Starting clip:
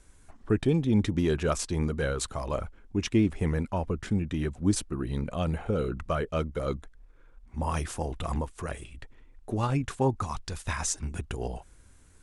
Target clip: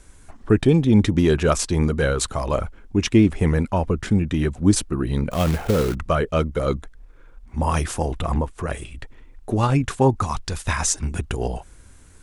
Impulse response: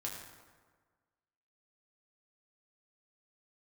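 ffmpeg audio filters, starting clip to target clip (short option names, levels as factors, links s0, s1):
-filter_complex "[0:a]asettb=1/sr,asplit=3[s0][s1][s2];[s0]atrim=end=5.314[s3];[s1]atrim=start=5.31:end=5.95,asetpts=PTS-STARTPTS,afade=t=in:d=0.004:c=qsin,afade=t=out:st=0.636:d=0.004:c=qsin,acrusher=bits=3:mode=log:mix=0:aa=0.000001[s4];[s2]atrim=start=5.946[s5];[s3][s4]acrossfade=d=0.004:c1=hsin:c2=qsin[s6];[s6][s5]acrossfade=d=0.004:c1=qsin:c2=hsin,asplit=3[s7][s8][s9];[s7]afade=t=out:st=8.2:d=0.02[s10];[s8]highshelf=f=2700:g=-8.5,afade=t=in:st=8.2:d=0.02,afade=t=out:st=8.69:d=0.02[s11];[s9]afade=t=in:st=8.69:d=0.02[s12];[s10][s11][s12]amix=inputs=3:normalize=0,volume=2.66"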